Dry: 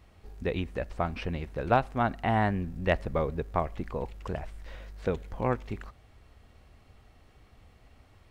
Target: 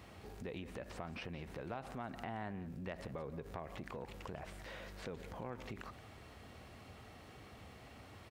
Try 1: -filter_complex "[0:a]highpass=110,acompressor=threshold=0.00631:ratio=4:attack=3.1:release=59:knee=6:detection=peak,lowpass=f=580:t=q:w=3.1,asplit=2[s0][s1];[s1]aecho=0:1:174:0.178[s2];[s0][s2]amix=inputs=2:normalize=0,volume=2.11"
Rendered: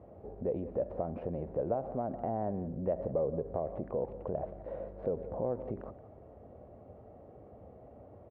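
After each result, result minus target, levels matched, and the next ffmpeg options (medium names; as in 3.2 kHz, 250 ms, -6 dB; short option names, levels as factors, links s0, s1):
compression: peak gain reduction -6.5 dB; 500 Hz band +2.5 dB
-filter_complex "[0:a]highpass=110,acompressor=threshold=0.00224:ratio=4:attack=3.1:release=59:knee=6:detection=peak,lowpass=f=580:t=q:w=3.1,asplit=2[s0][s1];[s1]aecho=0:1:174:0.178[s2];[s0][s2]amix=inputs=2:normalize=0,volume=2.11"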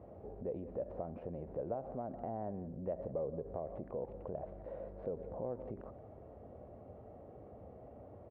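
500 Hz band +3.5 dB
-filter_complex "[0:a]highpass=110,acompressor=threshold=0.00224:ratio=4:attack=3.1:release=59:knee=6:detection=peak,asplit=2[s0][s1];[s1]aecho=0:1:174:0.178[s2];[s0][s2]amix=inputs=2:normalize=0,volume=2.11"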